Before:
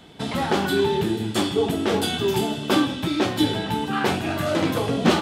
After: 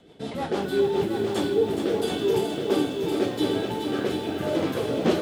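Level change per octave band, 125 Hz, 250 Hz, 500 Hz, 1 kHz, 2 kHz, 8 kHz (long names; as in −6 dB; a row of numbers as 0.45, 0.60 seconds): −6.5, −3.5, +0.5, −7.0, −8.0, −7.5 decibels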